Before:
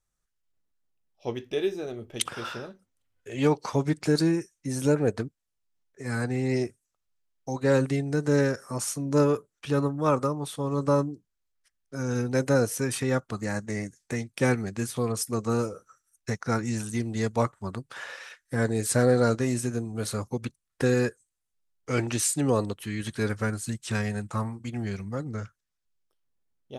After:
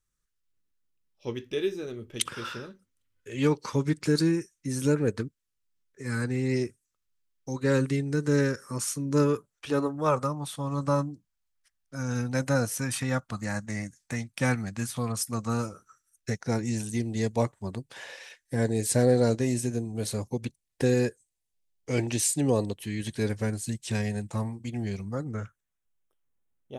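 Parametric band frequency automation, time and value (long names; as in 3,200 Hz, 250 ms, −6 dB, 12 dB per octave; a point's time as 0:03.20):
parametric band −14 dB 0.5 octaves
0:09.34 710 Hz
0:09.76 110 Hz
0:10.28 400 Hz
0:15.62 400 Hz
0:16.49 1,300 Hz
0:24.92 1,300 Hz
0:25.37 4,700 Hz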